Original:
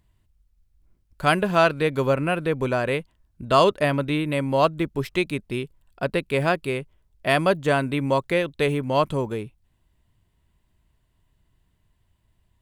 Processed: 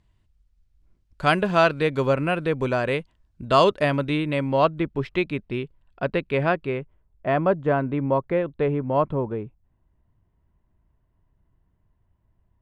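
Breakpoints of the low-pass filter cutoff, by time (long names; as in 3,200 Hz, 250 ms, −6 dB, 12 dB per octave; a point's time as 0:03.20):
0:04.11 6,800 Hz
0:04.71 3,100 Hz
0:06.28 3,100 Hz
0:07.28 1,300 Hz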